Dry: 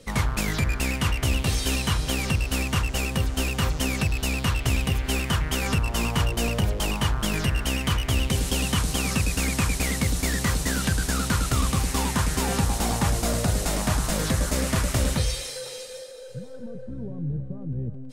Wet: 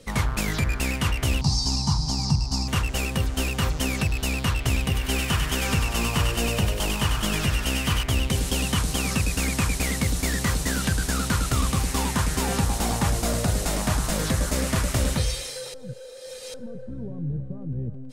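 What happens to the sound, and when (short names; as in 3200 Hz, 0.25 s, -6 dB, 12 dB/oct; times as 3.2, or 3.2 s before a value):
1.41–2.68 EQ curve 100 Hz 0 dB, 140 Hz +7 dB, 350 Hz -6 dB, 500 Hz -17 dB, 880 Hz +6 dB, 1600 Hz -18 dB, 3200 Hz -17 dB, 4800 Hz +12 dB, 9400 Hz -10 dB, 15000 Hz -22 dB
4.87–8.03 thinning echo 97 ms, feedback 67%, high-pass 1200 Hz, level -3.5 dB
15.74–16.54 reverse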